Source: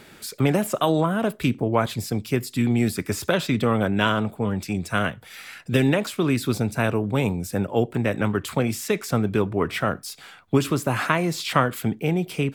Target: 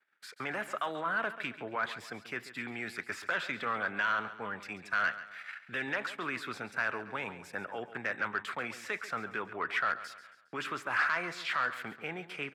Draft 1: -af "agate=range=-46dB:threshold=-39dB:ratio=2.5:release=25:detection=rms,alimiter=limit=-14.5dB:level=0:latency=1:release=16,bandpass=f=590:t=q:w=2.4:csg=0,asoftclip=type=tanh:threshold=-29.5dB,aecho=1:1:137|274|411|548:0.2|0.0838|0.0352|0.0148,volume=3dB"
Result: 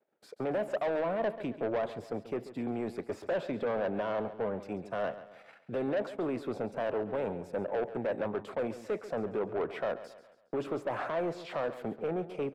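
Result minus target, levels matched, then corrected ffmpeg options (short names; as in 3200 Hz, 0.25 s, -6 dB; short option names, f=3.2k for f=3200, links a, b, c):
2000 Hz band -12.5 dB; soft clip: distortion +9 dB
-af "agate=range=-46dB:threshold=-39dB:ratio=2.5:release=25:detection=rms,alimiter=limit=-14.5dB:level=0:latency=1:release=16,bandpass=f=1.6k:t=q:w=2.4:csg=0,asoftclip=type=tanh:threshold=-22.5dB,aecho=1:1:137|274|411|548:0.2|0.0838|0.0352|0.0148,volume=3dB"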